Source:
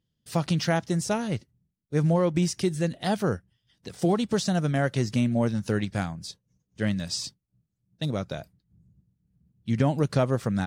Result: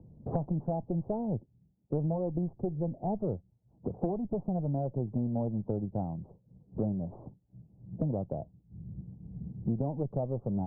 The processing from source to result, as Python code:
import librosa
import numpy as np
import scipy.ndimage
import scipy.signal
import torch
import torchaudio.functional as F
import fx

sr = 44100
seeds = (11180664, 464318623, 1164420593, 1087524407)

y = fx.diode_clip(x, sr, knee_db=-26.5)
y = scipy.signal.sosfilt(scipy.signal.butter(8, 860.0, 'lowpass', fs=sr, output='sos'), y)
y = fx.band_squash(y, sr, depth_pct=100)
y = y * 10.0 ** (-4.5 / 20.0)